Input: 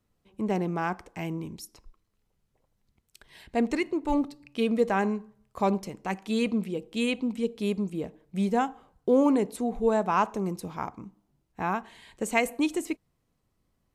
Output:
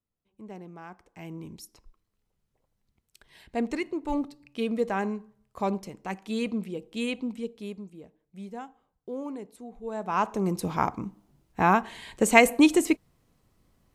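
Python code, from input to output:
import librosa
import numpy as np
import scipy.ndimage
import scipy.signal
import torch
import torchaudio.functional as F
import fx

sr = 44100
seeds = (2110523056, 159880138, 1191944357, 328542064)

y = fx.gain(x, sr, db=fx.line((0.88, -15.0), (1.52, -3.0), (7.27, -3.0), (7.97, -14.0), (9.82, -14.0), (10.16, -2.0), (10.72, 8.0)))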